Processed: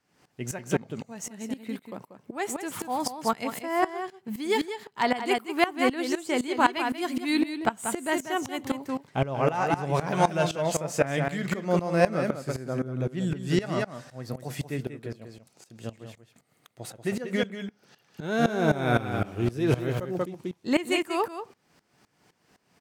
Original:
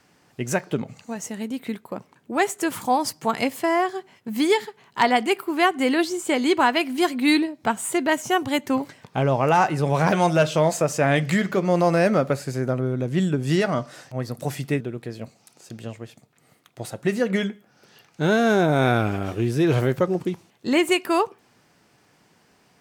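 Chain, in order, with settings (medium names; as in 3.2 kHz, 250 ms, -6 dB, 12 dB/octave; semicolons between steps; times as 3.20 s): on a send: delay 187 ms -5.5 dB; on the sum: sawtooth tremolo in dB swelling 3.9 Hz, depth 18 dB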